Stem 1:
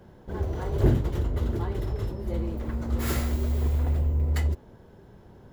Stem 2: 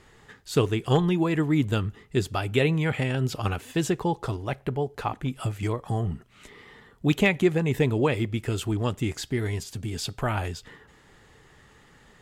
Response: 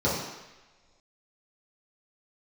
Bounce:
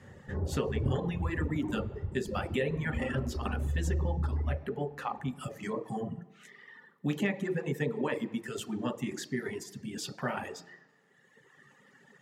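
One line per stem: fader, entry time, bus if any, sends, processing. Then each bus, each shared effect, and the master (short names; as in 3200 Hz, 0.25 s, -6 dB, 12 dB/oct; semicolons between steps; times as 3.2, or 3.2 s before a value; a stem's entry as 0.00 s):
-10.5 dB, 0.00 s, send -9.5 dB, LPF 1900 Hz 24 dB/oct
-5.0 dB, 0.00 s, send -16 dB, HPF 170 Hz 24 dB/oct; bell 1800 Hz +10.5 dB 0.23 oct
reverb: on, pre-delay 3 ms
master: reverb removal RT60 1.7 s; compressor 2.5:1, threshold -29 dBFS, peak gain reduction 8.5 dB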